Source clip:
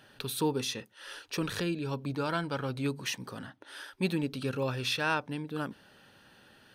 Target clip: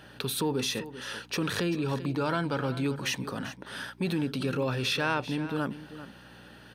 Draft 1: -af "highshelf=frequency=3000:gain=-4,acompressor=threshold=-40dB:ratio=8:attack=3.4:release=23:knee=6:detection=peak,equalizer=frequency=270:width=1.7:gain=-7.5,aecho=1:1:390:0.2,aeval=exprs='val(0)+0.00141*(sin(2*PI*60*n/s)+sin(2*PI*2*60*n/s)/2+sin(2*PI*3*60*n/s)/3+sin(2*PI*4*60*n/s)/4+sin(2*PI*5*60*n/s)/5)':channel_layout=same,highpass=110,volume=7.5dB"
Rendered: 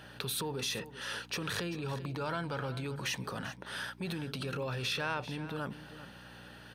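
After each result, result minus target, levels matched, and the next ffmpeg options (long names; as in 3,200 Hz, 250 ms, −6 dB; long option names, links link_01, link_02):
downward compressor: peak gain reduction +6 dB; 250 Hz band −4.0 dB
-af "highshelf=frequency=3000:gain=-4,acompressor=threshold=-33dB:ratio=8:attack=3.4:release=23:knee=6:detection=peak,equalizer=frequency=270:width=1.7:gain=-7.5,aecho=1:1:390:0.2,aeval=exprs='val(0)+0.00141*(sin(2*PI*60*n/s)+sin(2*PI*2*60*n/s)/2+sin(2*PI*3*60*n/s)/3+sin(2*PI*4*60*n/s)/4+sin(2*PI*5*60*n/s)/5)':channel_layout=same,highpass=110,volume=7.5dB"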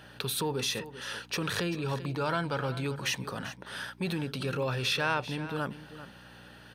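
250 Hz band −3.5 dB
-af "highshelf=frequency=3000:gain=-4,acompressor=threshold=-33dB:ratio=8:attack=3.4:release=23:knee=6:detection=peak,aecho=1:1:390:0.2,aeval=exprs='val(0)+0.00141*(sin(2*PI*60*n/s)+sin(2*PI*2*60*n/s)/2+sin(2*PI*3*60*n/s)/3+sin(2*PI*4*60*n/s)/4+sin(2*PI*5*60*n/s)/5)':channel_layout=same,highpass=110,volume=7.5dB"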